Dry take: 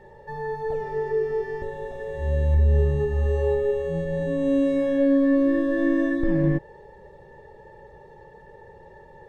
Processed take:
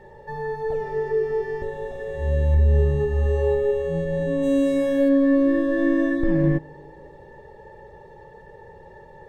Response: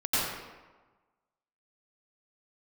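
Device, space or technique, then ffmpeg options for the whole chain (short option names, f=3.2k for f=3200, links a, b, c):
compressed reverb return: -filter_complex "[0:a]asplit=2[a][b];[1:a]atrim=start_sample=2205[c];[b][c]afir=irnorm=-1:irlink=0,acompressor=threshold=-21dB:ratio=6,volume=-23.5dB[d];[a][d]amix=inputs=2:normalize=0,asplit=3[e][f][g];[e]afade=t=out:st=4.42:d=0.02[h];[f]aemphasis=mode=production:type=50fm,afade=t=in:st=4.42:d=0.02,afade=t=out:st=5.08:d=0.02[i];[g]afade=t=in:st=5.08:d=0.02[j];[h][i][j]amix=inputs=3:normalize=0,volume=1.5dB"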